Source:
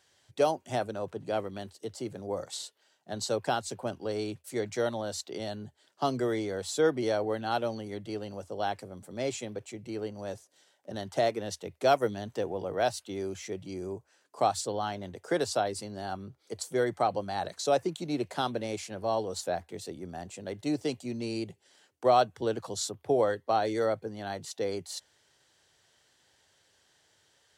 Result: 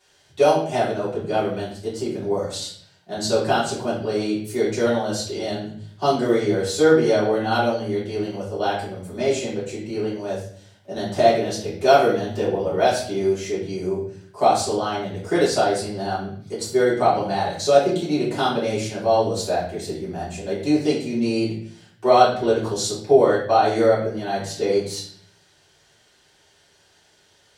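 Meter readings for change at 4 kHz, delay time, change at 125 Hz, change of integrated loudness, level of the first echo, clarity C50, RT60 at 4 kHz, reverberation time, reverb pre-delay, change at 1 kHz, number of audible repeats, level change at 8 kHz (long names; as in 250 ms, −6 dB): +9.5 dB, no echo audible, +10.5 dB, +10.5 dB, no echo audible, 4.5 dB, 0.55 s, 0.55 s, 3 ms, +10.0 dB, no echo audible, +7.5 dB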